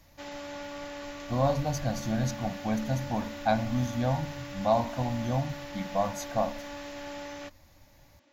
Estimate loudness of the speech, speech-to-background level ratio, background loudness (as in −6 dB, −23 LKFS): −30.5 LKFS, 10.0 dB, −40.5 LKFS